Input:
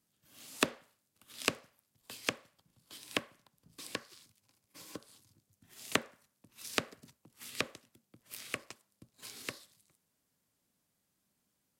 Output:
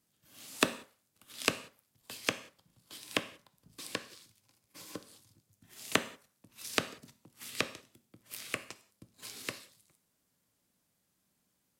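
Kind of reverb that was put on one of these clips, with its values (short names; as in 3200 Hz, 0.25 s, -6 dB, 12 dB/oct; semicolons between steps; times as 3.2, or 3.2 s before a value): non-linear reverb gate 0.21 s falling, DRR 11.5 dB; gain +2 dB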